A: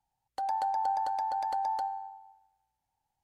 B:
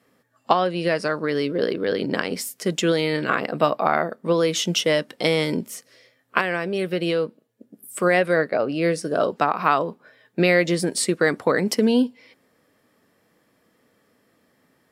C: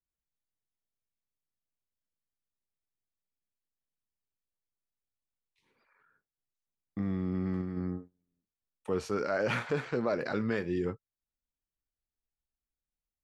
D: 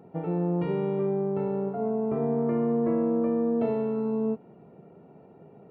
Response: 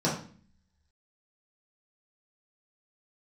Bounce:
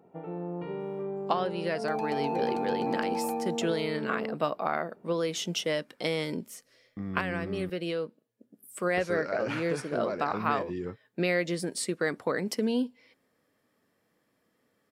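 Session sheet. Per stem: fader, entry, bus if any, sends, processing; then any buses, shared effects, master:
-8.5 dB, 1.50 s, no send, waveshaping leveller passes 2
-9.5 dB, 0.80 s, no send, none
-3.5 dB, 0.00 s, muted 7.70–8.97 s, no send, none
-5.0 dB, 0.00 s, no send, bass shelf 220 Hz -10 dB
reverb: none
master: none

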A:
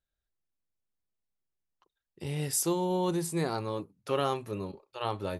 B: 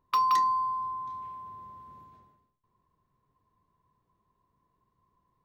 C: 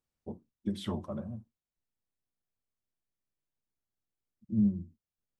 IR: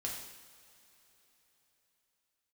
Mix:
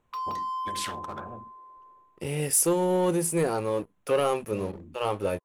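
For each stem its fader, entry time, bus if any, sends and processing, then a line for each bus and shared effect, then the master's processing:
-3.5 dB, 0.00 s, no send, graphic EQ with 31 bands 125 Hz -7 dB, 500 Hz +8 dB, 2.5 kHz +5 dB, 4 kHz -12 dB, 10 kHz +10 dB; waveshaping leveller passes 2
-1.0 dB, 0.00 s, no send, local Wiener filter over 15 samples; steep high-pass 340 Hz 36 dB/octave; peak limiter -27 dBFS, peak gain reduction 10.5 dB; auto duck -7 dB, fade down 0.30 s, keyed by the first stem
0.0 dB, 0.00 s, no send, local Wiener filter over 9 samples; spectrum-flattening compressor 10:1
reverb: none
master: none

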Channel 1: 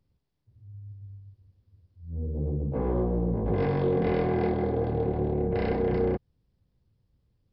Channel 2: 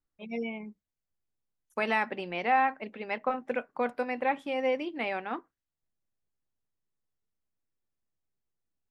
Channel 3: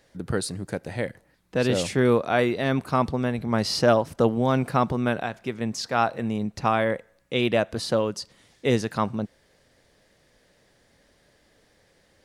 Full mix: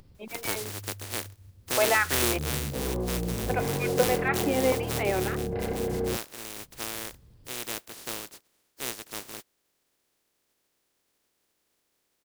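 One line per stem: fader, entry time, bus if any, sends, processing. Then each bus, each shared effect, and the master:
-4.0 dB, 0.00 s, no send, upward compressor, threshold -34 dBFS
0.0 dB, 0.00 s, muted 2.38–3.48 s, no send, step-sequenced high-pass 3.6 Hz 300–2500 Hz
2.13 s -6 dB -> 2.63 s -13.5 dB, 0.15 s, no send, spectral contrast reduction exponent 0.11; peaking EQ 360 Hz +7.5 dB 1.2 oct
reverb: none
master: none

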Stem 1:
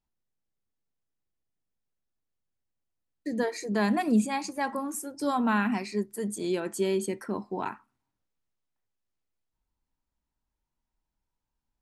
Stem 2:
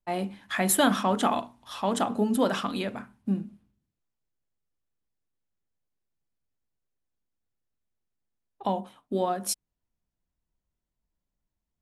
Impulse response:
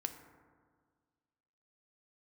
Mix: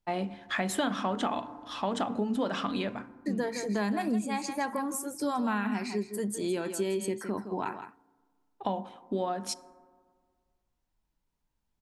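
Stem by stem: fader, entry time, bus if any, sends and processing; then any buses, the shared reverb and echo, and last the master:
-0.5 dB, 0.00 s, send -16 dB, echo send -10 dB, none
-2.5 dB, 0.00 s, send -6.5 dB, no echo send, low-pass 5.8 kHz 12 dB/octave; auto duck -9 dB, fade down 0.35 s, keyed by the first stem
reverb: on, RT60 1.7 s, pre-delay 3 ms
echo: delay 164 ms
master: compression 4:1, threshold -27 dBFS, peak gain reduction 9 dB

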